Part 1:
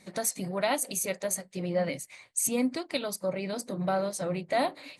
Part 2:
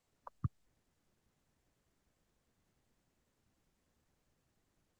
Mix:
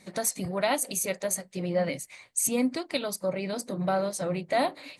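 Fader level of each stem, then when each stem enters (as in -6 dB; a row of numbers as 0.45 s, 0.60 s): +1.5 dB, -7.5 dB; 0.00 s, 0.00 s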